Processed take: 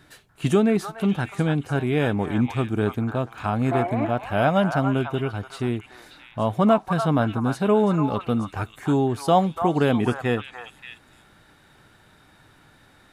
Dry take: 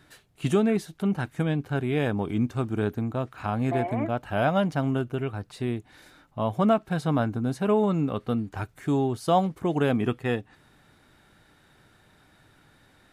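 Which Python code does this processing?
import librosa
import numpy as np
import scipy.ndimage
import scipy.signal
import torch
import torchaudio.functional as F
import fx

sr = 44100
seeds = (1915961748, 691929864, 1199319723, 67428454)

y = fx.echo_stepped(x, sr, ms=291, hz=1100.0, octaves=1.4, feedback_pct=70, wet_db=-2.5)
y = y * 10.0 ** (3.5 / 20.0)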